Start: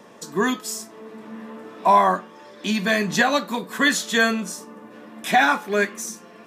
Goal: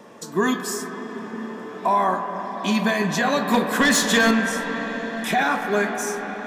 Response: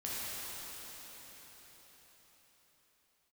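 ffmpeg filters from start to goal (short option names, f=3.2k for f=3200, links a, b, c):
-filter_complex "[0:a]alimiter=limit=-13.5dB:level=0:latency=1:release=59,asettb=1/sr,asplit=3[a][b][c];[a]atrim=end=3.474[d];[b]atrim=start=3.47:end=4.31,asetpts=PTS-STARTPTS,afade=t=in:d=0.004:c=qsin,afade=t=out:st=0.836:d=0.004:c=qsin,aeval=exprs='0.211*sin(PI/2*1.41*val(0)/0.211)':c=same[e];[c]atrim=start=4.306[f];[d][e]acrossfade=d=0.004:c1=hsin:c2=qsin[g];[g][f]acrossfade=d=0.004:c1=qsin:c2=hsin,asplit=2[h][i];[1:a]atrim=start_sample=2205,asetrate=30429,aresample=44100,lowpass=2.3k[j];[i][j]afir=irnorm=-1:irlink=0,volume=-9dB[k];[h][k]amix=inputs=2:normalize=0"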